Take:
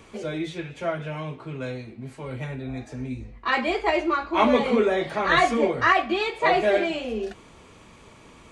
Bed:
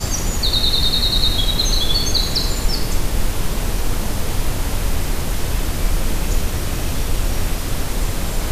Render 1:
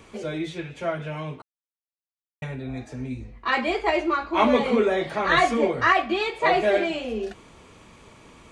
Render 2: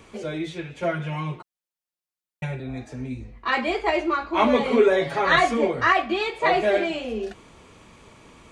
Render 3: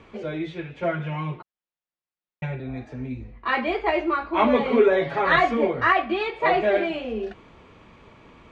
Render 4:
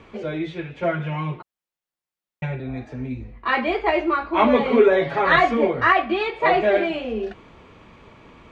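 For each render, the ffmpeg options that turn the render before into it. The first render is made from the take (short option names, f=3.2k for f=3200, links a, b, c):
-filter_complex "[0:a]asplit=3[a][b][c];[a]atrim=end=1.42,asetpts=PTS-STARTPTS,afade=t=out:st=1.416:d=0.004:c=hsin[d];[b]atrim=start=1.42:end=2.42,asetpts=PTS-STARTPTS,volume=0[e];[c]atrim=start=2.42,asetpts=PTS-STARTPTS,afade=t=in:d=0.004:c=hsin[f];[d][e][f]concat=n=3:v=0:a=1"
-filter_complex "[0:a]asettb=1/sr,asplit=3[a][b][c];[a]atrim=end=0.824[d];[b]atrim=start=0.82:end=2.6,asetpts=PTS-STARTPTS,afade=t=in:d=0.004:c=qsin,afade=t=out:st=1.776:d=0.004:c=qsin,aecho=1:1:5.6:0.93,atrim=end_sample=78498[e];[c]atrim=start=2.596[f];[d][e]acrossfade=d=0.004:c1=hsin:c2=qsin[g];[g][f]acrossfade=d=0.004:c1=qsin:c2=hsin,asettb=1/sr,asplit=3[h][i][j];[h]atrim=end=4.704[k];[i]atrim=start=4.7:end=5.36,asetpts=PTS-STARTPTS,afade=t=in:d=0.004:c=qsin,afade=t=out:st=0.656:d=0.004:c=qsin,aecho=1:1:7.2:0.95,atrim=end_sample=29106[l];[j]atrim=start=5.356[m];[k][l]acrossfade=d=0.004:c1=hsin:c2=qsin[n];[n][m]acrossfade=d=0.004:c1=qsin:c2=hsin"
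-af "lowpass=3.1k"
-af "volume=2.5dB"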